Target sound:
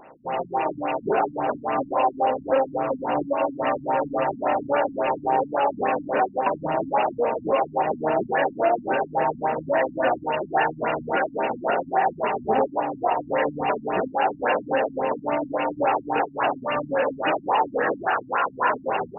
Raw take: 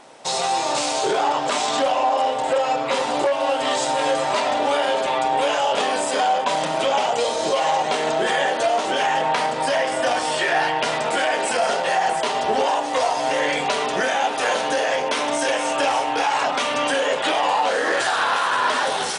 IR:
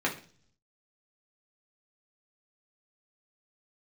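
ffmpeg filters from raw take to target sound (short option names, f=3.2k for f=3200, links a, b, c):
-filter_complex "[0:a]asplit=2[a][b];[b]asetrate=22050,aresample=44100,atempo=2,volume=-15dB[c];[a][c]amix=inputs=2:normalize=0,aexciter=amount=15.2:drive=4.4:freq=3.5k,afftfilt=real='re*lt(b*sr/1024,270*pow(2900/270,0.5+0.5*sin(2*PI*3.6*pts/sr)))':imag='im*lt(b*sr/1024,270*pow(2900/270,0.5+0.5*sin(2*PI*3.6*pts/sr)))':win_size=1024:overlap=0.75"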